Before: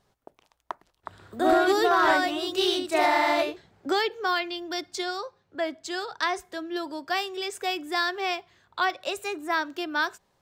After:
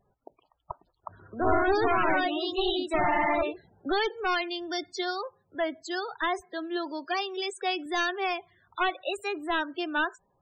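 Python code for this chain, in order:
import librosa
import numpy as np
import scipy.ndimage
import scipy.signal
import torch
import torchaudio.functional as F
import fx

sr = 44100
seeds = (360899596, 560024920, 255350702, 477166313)

y = np.minimum(x, 2.0 * 10.0 ** (-22.5 / 20.0) - x)
y = fx.highpass(y, sr, hz=150.0, slope=12, at=(6.41, 7.86))
y = fx.spec_topn(y, sr, count=32)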